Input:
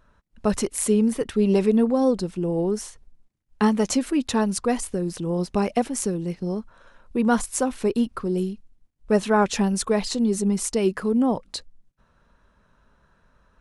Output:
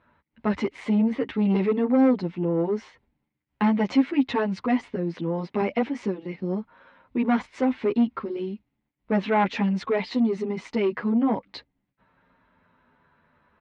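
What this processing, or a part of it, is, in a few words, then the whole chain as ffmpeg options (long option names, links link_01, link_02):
barber-pole flanger into a guitar amplifier: -filter_complex "[0:a]asettb=1/sr,asplit=3[link_01][link_02][link_03];[link_01]atrim=end=4.954[link_04];[link_02]atrim=start=4.95:end=5.61,asetpts=PTS-STARTPTS,afade=type=in:duration=0.004:curve=qsin,afade=type=out:start_time=0.656:duration=0.004:curve=qsin,highpass=130[link_05];[link_03]atrim=start=5.606[link_06];[link_04][link_05]acrossfade=duration=0.004:curve1=hsin:curve2=qsin[link_07];[link_07][link_06]acrossfade=duration=0.004:curve1=qsin:curve2=hsin,asplit=2[link_08][link_09];[link_09]adelay=9.7,afreqshift=-0.38[link_10];[link_08][link_10]amix=inputs=2:normalize=1,asoftclip=type=tanh:threshold=-18dB,highpass=100,equalizer=frequency=270:width_type=q:width=4:gain=6,equalizer=frequency=900:width_type=q:width=4:gain=5,equalizer=frequency=2100:width_type=q:width=4:gain=9,lowpass=frequency=3700:width=0.5412,lowpass=frequency=3700:width=1.3066,volume=1.5dB"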